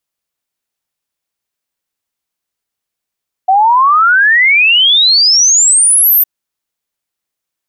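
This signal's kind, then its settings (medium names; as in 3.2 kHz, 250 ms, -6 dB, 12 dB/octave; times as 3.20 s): log sweep 740 Hz -> 14 kHz 2.76 s -5 dBFS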